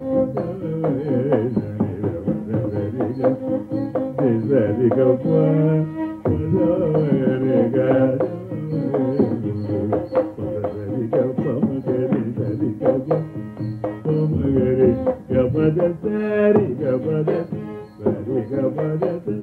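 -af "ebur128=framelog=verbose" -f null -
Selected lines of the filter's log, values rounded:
Integrated loudness:
  I:         -20.7 LUFS
  Threshold: -30.7 LUFS
Loudness range:
  LRA:         3.8 LU
  Threshold: -40.5 LUFS
  LRA low:   -22.4 LUFS
  LRA high:  -18.6 LUFS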